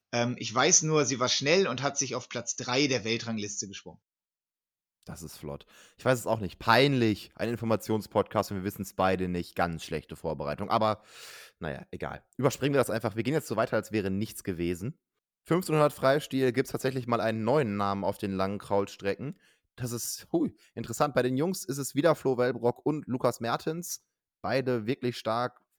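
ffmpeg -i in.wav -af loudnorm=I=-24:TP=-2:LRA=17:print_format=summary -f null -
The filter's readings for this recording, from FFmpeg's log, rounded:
Input Integrated:    -29.2 LUFS
Input True Peak:      -6.5 dBTP
Input LRA:             3.9 LU
Input Threshold:     -39.6 LUFS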